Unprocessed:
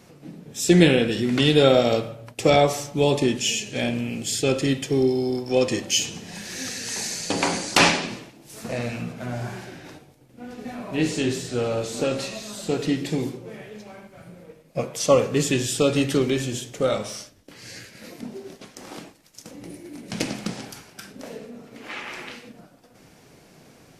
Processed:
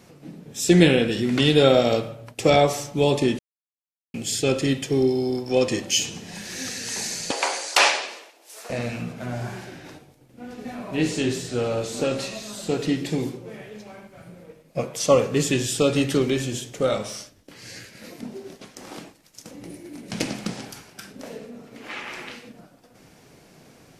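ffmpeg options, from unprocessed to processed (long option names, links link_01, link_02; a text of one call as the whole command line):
ffmpeg -i in.wav -filter_complex "[0:a]asettb=1/sr,asplit=3[link_01][link_02][link_03];[link_01]atrim=end=7.314[link_04];[link_02]atrim=start=7.31:end=8.7,asetpts=PTS-STARTPTS,afade=type=in:duration=0.004:curve=qsin,afade=type=out:start_time=1.386:duration=0.004:curve=qsin,highpass=frequency=480:width=0.5412,highpass=frequency=480:width=1.3066[link_05];[link_03]atrim=start=8.696[link_06];[link_04][link_05]acrossfade=duration=0.004:curve1=hsin:curve2=qsin[link_07];[link_07][link_06]acrossfade=duration=0.004:curve1=qsin:curve2=hsin,asplit=3[link_08][link_09][link_10];[link_08]atrim=end=3.39,asetpts=PTS-STARTPTS,afade=type=out:start_time=3.386:duration=0.004:curve=hsin[link_11];[link_09]atrim=start=3.39:end=4.14,asetpts=PTS-STARTPTS,volume=0[link_12];[link_10]atrim=start=4.14,asetpts=PTS-STARTPTS,afade=type=in:duration=0.004:curve=hsin[link_13];[link_11][link_12][link_13]concat=n=3:v=0:a=1" out.wav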